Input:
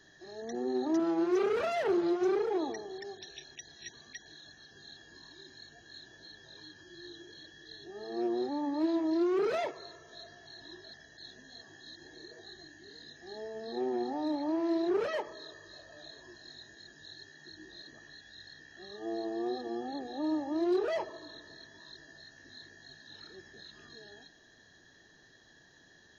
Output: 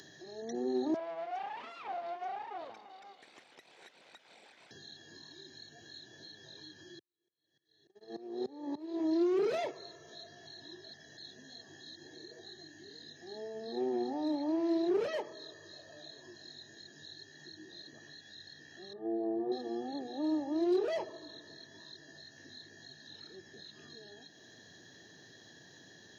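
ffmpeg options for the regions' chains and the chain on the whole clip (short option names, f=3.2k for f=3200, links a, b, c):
-filter_complex "[0:a]asettb=1/sr,asplit=3[a][b][c];[a]atrim=end=0.944[d];[b]atrim=start=0.94:end=4.71,asetpts=PTS-STARTPTS,afade=t=in:d=0.004:c=qsin,afade=t=out:st=3.766:d=0.004:c=qsin,equalizer=f=1.2k:t=o:w=1.2:g=-9,aeval=exprs='abs(val(0))':c=same,highpass=450,lowpass=2.4k[e];[c]atrim=start=4.706[f];[d][e]acrossfade=d=0.004:c1=hsin:c2=qsin[g];[g][f]acrossfade=d=0.004:c1=qsin:c2=hsin,asettb=1/sr,asplit=3[h][i][j];[h]atrim=end=6.994[k];[i]atrim=start=6.99:end=9,asetpts=PTS-STARTPTS,afade=t=in:d=0.004:c=qsin,afade=t=out:st=2.006:d=0.004:c=qsin,agate=range=-41dB:threshold=-42dB:ratio=16:release=100:detection=peak,asplit=7[l][m][n][o][p][q][r];[m]adelay=87,afreqshift=50,volume=-13.5dB[s];[n]adelay=174,afreqshift=100,volume=-17.9dB[t];[o]adelay=261,afreqshift=150,volume=-22.4dB[u];[p]adelay=348,afreqshift=200,volume=-26.8dB[v];[q]adelay=435,afreqshift=250,volume=-31.2dB[w];[r]adelay=522,afreqshift=300,volume=-35.7dB[x];[l][s][t][u][v][w][x]amix=inputs=7:normalize=0,atrim=end_sample=88641,aeval=exprs='val(0)*pow(10,-21*if(lt(mod(-3.4*n/s,1),2*abs(-3.4)/1000),1-mod(-3.4*n/s,1)/(2*abs(-3.4)/1000),(mod(-3.4*n/s,1)-2*abs(-3.4)/1000)/(1-2*abs(-3.4)/1000))/20)':c=same[y];[j]atrim=start=8.996[z];[k][y]acrossfade=d=0.004:c1=hsin:c2=qsin[aa];[aa][z]acrossfade=d=0.004:c1=qsin:c2=hsin,asettb=1/sr,asplit=3[ab][ac][ad];[ab]atrim=end=18.934[ae];[ac]atrim=start=18.93:end=19.52,asetpts=PTS-STARTPTS,afade=t=in:d=0.004:c=qsin,afade=t=out:st=0.586:d=0.004:c=qsin,lowpass=1k,asplit=2[af][ag];[ag]adelay=27,volume=-5dB[ah];[af][ah]amix=inputs=2:normalize=0,atrim=end_sample=26019[ai];[ad]atrim=start=19.516[aj];[ae][ai]acrossfade=d=0.004:c1=hsin:c2=qsin[ak];[ak][aj]acrossfade=d=0.004:c1=qsin:c2=hsin,highpass=f=96:w=0.5412,highpass=f=96:w=1.3066,equalizer=f=1.3k:w=1.1:g=-7,acompressor=mode=upward:threshold=-48dB:ratio=2.5"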